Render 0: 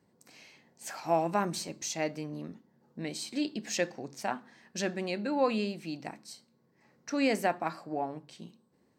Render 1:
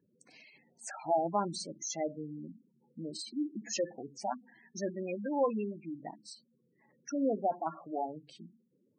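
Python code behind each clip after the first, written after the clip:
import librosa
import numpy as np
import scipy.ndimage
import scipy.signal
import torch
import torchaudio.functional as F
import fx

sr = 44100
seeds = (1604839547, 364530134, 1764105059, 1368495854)

y = fx.spec_gate(x, sr, threshold_db=-10, keep='strong')
y = fx.low_shelf(y, sr, hz=260.0, db=-5.5)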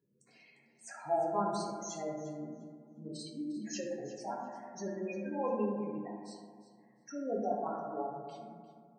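y = fx.echo_thinned(x, sr, ms=351, feedback_pct=17, hz=420.0, wet_db=-15.5)
y = fx.rev_fdn(y, sr, rt60_s=2.0, lf_ratio=1.05, hf_ratio=0.25, size_ms=43.0, drr_db=-4.5)
y = y * 10.0 ** (-8.0 / 20.0)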